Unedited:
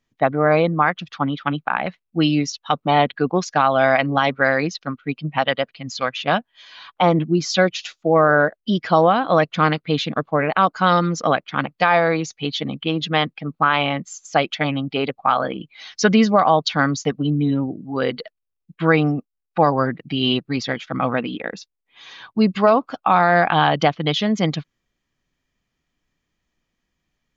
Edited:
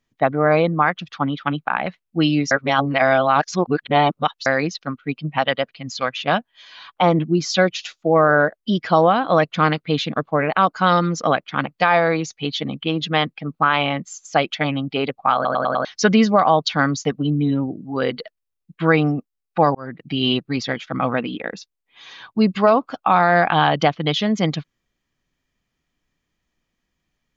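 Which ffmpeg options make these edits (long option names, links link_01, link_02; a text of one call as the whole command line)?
ffmpeg -i in.wav -filter_complex "[0:a]asplit=9[link_01][link_02][link_03][link_04][link_05][link_06][link_07][link_08][link_09];[link_01]atrim=end=2.512[link_10];[link_02]atrim=start=2.508:end=4.462,asetpts=PTS-STARTPTS,areverse[link_11];[link_03]atrim=start=4.458:end=15.452[link_12];[link_04]atrim=start=15.348:end=15.452[link_13];[link_05]atrim=start=15.348:end=15.452[link_14];[link_06]atrim=start=15.348:end=15.452[link_15];[link_07]atrim=start=15.348:end=15.452[link_16];[link_08]atrim=start=15.848:end=19.75,asetpts=PTS-STARTPTS,afade=type=out:start_time=3.898:duration=0.004:curve=hsin[link_17];[link_09]atrim=start=19.75,asetpts=PTS-STARTPTS,afade=type=in:duration=0.37[link_18];[link_10][link_11]acrossfade=duration=0.004:curve1=hsin:curve2=hsin[link_19];[link_19][link_12]acrossfade=duration=0.004:curve1=hsin:curve2=hsin[link_20];[link_20][link_13]acrossfade=duration=0.004:curve1=hsin:curve2=hsin[link_21];[link_21][link_14]acrossfade=duration=0.004:curve1=hsin:curve2=hsin[link_22];[link_22][link_15]acrossfade=duration=0.004:curve1=hsin:curve2=hsin[link_23];[link_23][link_16]acrossfade=duration=0.004:curve1=hsin:curve2=hsin[link_24];[link_17][link_18]concat=n=2:v=0:a=1[link_25];[link_24][link_25]acrossfade=duration=0.004:curve1=hsin:curve2=hsin" out.wav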